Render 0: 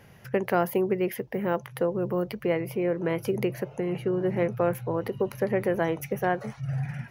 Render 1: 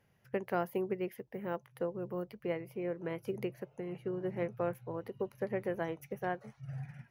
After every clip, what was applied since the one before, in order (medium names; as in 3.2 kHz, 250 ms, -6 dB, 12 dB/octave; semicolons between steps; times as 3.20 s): upward expansion 1.5:1, over -42 dBFS; trim -8.5 dB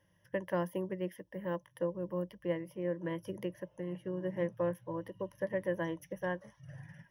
rippled EQ curve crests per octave 1.2, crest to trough 14 dB; trim -2.5 dB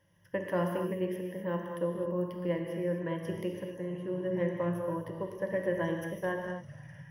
gated-style reverb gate 290 ms flat, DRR 1.5 dB; trim +1.5 dB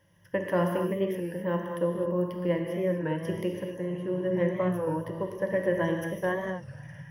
warped record 33 1/3 rpm, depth 100 cents; trim +4.5 dB